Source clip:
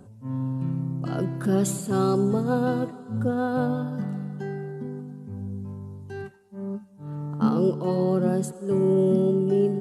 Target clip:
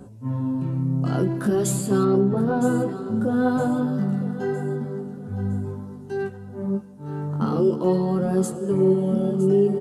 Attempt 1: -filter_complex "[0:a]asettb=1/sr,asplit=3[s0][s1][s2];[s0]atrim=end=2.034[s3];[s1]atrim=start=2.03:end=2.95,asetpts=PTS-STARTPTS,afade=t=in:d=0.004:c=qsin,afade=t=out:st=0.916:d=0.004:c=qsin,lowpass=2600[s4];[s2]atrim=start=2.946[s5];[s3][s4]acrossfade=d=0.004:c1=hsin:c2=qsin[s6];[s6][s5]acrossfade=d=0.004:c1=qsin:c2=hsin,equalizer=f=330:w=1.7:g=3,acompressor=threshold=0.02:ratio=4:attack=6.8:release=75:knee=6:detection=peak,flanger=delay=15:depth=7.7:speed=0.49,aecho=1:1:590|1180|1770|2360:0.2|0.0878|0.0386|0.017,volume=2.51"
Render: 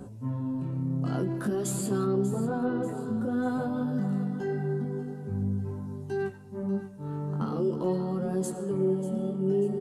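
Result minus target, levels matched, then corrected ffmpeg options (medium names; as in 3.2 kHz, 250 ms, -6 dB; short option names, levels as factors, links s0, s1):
compression: peak gain reduction +8 dB; echo 372 ms early
-filter_complex "[0:a]asettb=1/sr,asplit=3[s0][s1][s2];[s0]atrim=end=2.034[s3];[s1]atrim=start=2.03:end=2.95,asetpts=PTS-STARTPTS,afade=t=in:d=0.004:c=qsin,afade=t=out:st=0.916:d=0.004:c=qsin,lowpass=2600[s4];[s2]atrim=start=2.946[s5];[s3][s4]acrossfade=d=0.004:c1=hsin:c2=qsin[s6];[s6][s5]acrossfade=d=0.004:c1=qsin:c2=hsin,equalizer=f=330:w=1.7:g=3,acompressor=threshold=0.0708:ratio=4:attack=6.8:release=75:knee=6:detection=peak,flanger=delay=15:depth=7.7:speed=0.49,aecho=1:1:962|1924|2886|3848:0.2|0.0878|0.0386|0.017,volume=2.51"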